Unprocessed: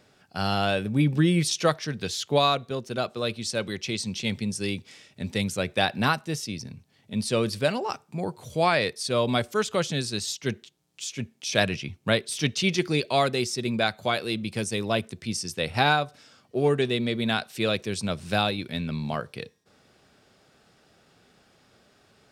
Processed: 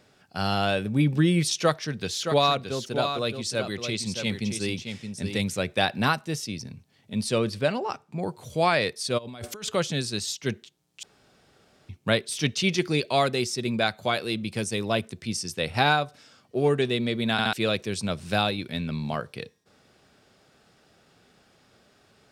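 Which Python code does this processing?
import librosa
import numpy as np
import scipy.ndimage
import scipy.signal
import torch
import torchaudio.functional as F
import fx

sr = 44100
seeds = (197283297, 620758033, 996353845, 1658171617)

y = fx.echo_single(x, sr, ms=620, db=-7.5, at=(2.15, 5.58), fade=0.02)
y = fx.high_shelf(y, sr, hz=5900.0, db=-10.0, at=(7.38, 8.23))
y = fx.over_compress(y, sr, threshold_db=-36.0, ratio=-1.0, at=(9.17, 9.69), fade=0.02)
y = fx.edit(y, sr, fx.room_tone_fill(start_s=11.03, length_s=0.86),
    fx.stutter_over(start_s=17.32, slice_s=0.07, count=3), tone=tone)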